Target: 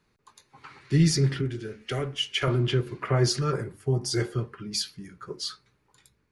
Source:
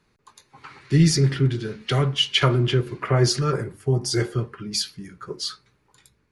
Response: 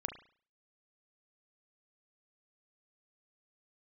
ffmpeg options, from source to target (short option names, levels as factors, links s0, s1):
-filter_complex "[0:a]asettb=1/sr,asplit=3[s0][s1][s2];[s0]atrim=end=1.414[s3];[s1]atrim=start=1.41:end=2.48,asetpts=PTS-STARTPTS,afade=t=in:d=0.004:c=qsin,afade=t=out:st=1.066:d=0.004:c=qsin,equalizer=f=160:t=o:w=0.67:g=-12,equalizer=f=1000:t=o:w=0.67:g=-8,equalizer=f=4000:t=o:w=0.67:g=-9[s4];[s2]atrim=start=2.476[s5];[s3][s4]acrossfade=d=0.004:c1=hsin:c2=qsin[s6];[s6][s5]acrossfade=d=0.004:c1=qsin:c2=hsin,volume=0.631"